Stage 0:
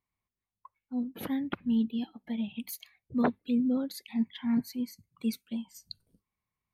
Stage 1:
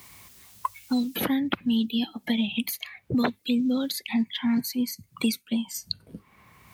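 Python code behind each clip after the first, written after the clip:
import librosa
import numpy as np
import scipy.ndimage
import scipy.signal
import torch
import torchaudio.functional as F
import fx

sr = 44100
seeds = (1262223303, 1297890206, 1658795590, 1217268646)

y = scipy.signal.sosfilt(scipy.signal.butter(2, 59.0, 'highpass', fs=sr, output='sos'), x)
y = fx.high_shelf(y, sr, hz=2300.0, db=10.0)
y = fx.band_squash(y, sr, depth_pct=100)
y = y * librosa.db_to_amplitude(4.5)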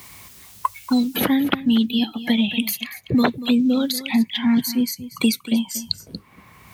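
y = x + 10.0 ** (-15.0 / 20.0) * np.pad(x, (int(236 * sr / 1000.0), 0))[:len(x)]
y = y * librosa.db_to_amplitude(6.5)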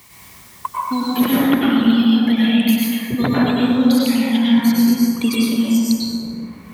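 y = fx.rev_plate(x, sr, seeds[0], rt60_s=2.6, hf_ratio=0.35, predelay_ms=85, drr_db=-7.0)
y = y * librosa.db_to_amplitude(-4.0)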